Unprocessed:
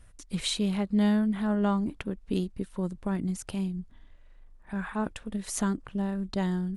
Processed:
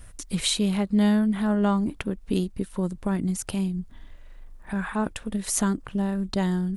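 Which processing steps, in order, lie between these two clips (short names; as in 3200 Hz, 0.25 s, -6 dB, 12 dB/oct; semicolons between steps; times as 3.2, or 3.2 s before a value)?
high shelf 9700 Hz +9 dB; in parallel at +0.5 dB: compressor, threshold -42 dBFS, peak gain reduction 19.5 dB; on the sum: gain +2.5 dB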